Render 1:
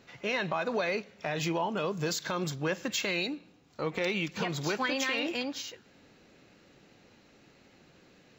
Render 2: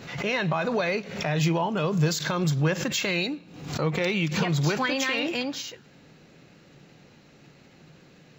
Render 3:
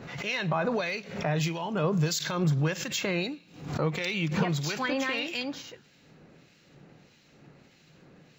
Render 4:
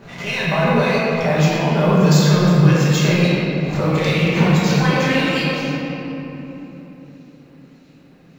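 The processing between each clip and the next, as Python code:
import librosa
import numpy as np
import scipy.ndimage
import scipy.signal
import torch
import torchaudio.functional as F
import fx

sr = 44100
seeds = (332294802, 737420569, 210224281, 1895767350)

y1 = fx.peak_eq(x, sr, hz=150.0, db=10.0, octaves=0.47)
y1 = fx.pre_swell(y1, sr, db_per_s=72.0)
y1 = y1 * librosa.db_to_amplitude(4.0)
y2 = fx.harmonic_tremolo(y1, sr, hz=1.6, depth_pct=70, crossover_hz=1900.0)
y3 = fx.law_mismatch(y2, sr, coded='A')
y3 = fx.room_shoebox(y3, sr, seeds[0], volume_m3=220.0, walls='hard', distance_m=1.2)
y3 = y3 * librosa.db_to_amplitude(4.5)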